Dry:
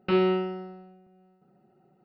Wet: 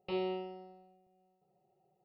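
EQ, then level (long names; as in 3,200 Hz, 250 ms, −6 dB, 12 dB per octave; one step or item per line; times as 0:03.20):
low-shelf EQ 200 Hz −4.5 dB
phaser with its sweep stopped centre 620 Hz, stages 4
−6.5 dB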